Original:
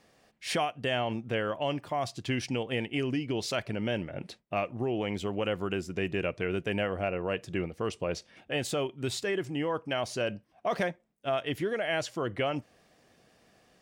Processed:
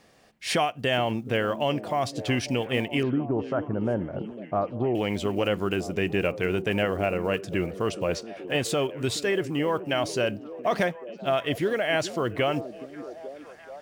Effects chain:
one scale factor per block 7 bits
0:03.03–0:04.95: Butterworth low-pass 1,400 Hz 36 dB per octave
on a send: echo through a band-pass that steps 425 ms, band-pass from 260 Hz, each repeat 0.7 octaves, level −9 dB
on the sum: level +5 dB

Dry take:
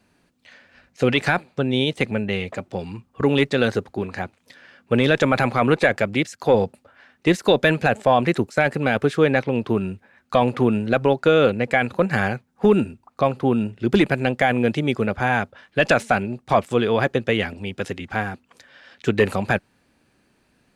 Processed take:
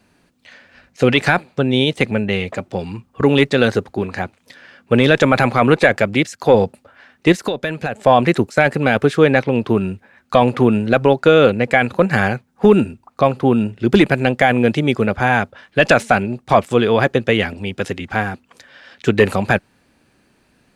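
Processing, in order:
0:07.32–0:08.02: downward compressor 6 to 1, threshold −24 dBFS, peak gain reduction 12 dB
level +5 dB

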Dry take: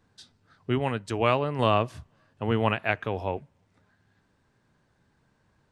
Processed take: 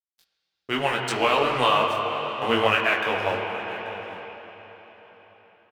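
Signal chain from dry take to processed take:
high-pass filter 1,300 Hz 6 dB per octave
brickwall limiter −20.5 dBFS, peak gain reduction 8.5 dB
automatic gain control gain up to 11 dB
dead-zone distortion −41 dBFS
single-tap delay 834 ms −17 dB
on a send at −2 dB: convolution reverb RT60 4.5 s, pre-delay 22 ms
on the sum: micro pitch shift up and down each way 26 cents
level +5 dB

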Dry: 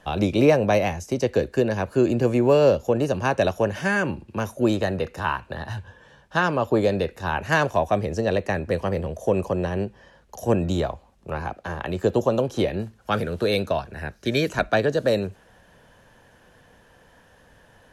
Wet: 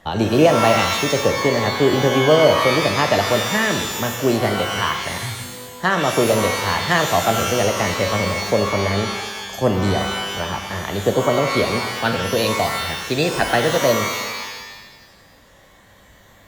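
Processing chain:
wrong playback speed 44.1 kHz file played as 48 kHz
reverb with rising layers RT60 1.2 s, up +12 semitones, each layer −2 dB, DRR 5.5 dB
level +2.5 dB

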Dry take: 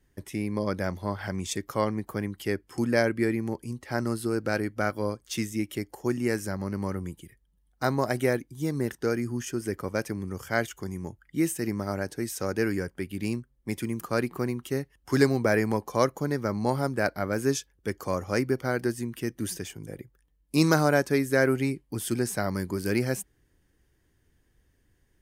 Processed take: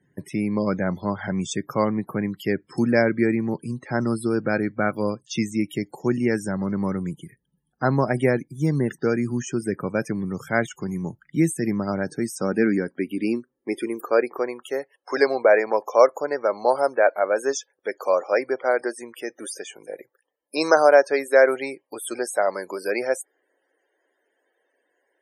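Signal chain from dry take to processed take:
low-shelf EQ 280 Hz −3 dB
high-pass filter sweep 150 Hz → 560 Hz, 0:12.06–0:14.59
spectral peaks only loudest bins 64
level +4.5 dB

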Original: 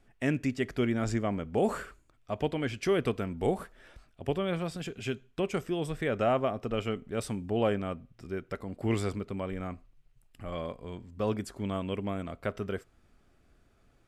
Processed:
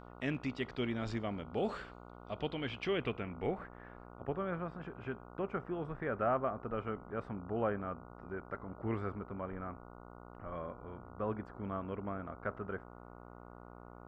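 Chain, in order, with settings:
low-pass filter sweep 3,900 Hz → 1,400 Hz, 0:02.43–0:04.26
hum with harmonics 60 Hz, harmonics 24, −45 dBFS −2 dB per octave
level −8 dB

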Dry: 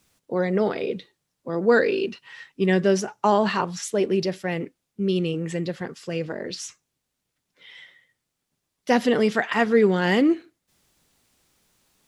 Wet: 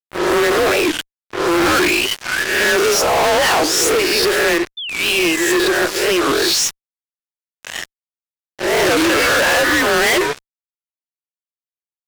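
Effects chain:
peak hold with a rise ahead of every peak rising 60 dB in 0.69 s
downward expander −40 dBFS
Chebyshev high-pass with heavy ripple 500 Hz, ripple 3 dB
frequency shifter −160 Hz
fuzz pedal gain 44 dB, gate −43 dBFS
sound drawn into the spectrogram fall, 0:04.78–0:05.88, 1,400–3,100 Hz −26 dBFS
wow of a warped record 45 rpm, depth 250 cents

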